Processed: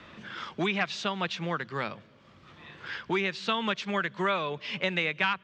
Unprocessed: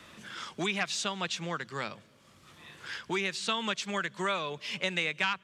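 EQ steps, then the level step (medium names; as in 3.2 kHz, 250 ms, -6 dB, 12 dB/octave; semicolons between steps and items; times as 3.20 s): distance through air 200 m; +4.5 dB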